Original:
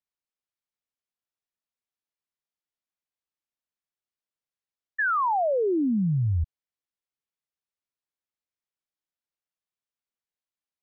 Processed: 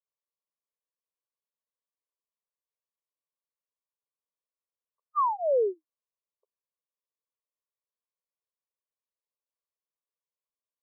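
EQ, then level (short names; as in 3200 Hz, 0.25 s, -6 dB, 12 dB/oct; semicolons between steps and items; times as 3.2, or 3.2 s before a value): brick-wall FIR band-pass 360–1200 Hz; fixed phaser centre 510 Hz, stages 8; +1.5 dB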